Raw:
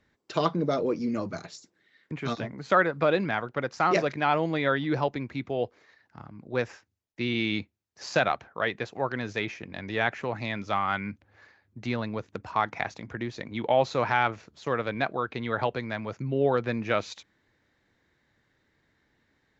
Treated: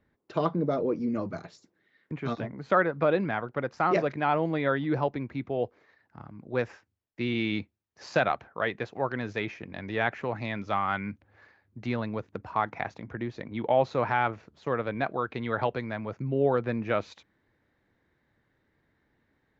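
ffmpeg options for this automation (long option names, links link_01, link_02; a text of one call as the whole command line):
ffmpeg -i in.wav -af "asetnsamples=nb_out_samples=441:pad=0,asendcmd='1.15 lowpass f 1600;6.21 lowpass f 2500;12.21 lowpass f 1600;15.06 lowpass f 2800;15.89 lowpass f 1600',lowpass=frequency=1100:poles=1" out.wav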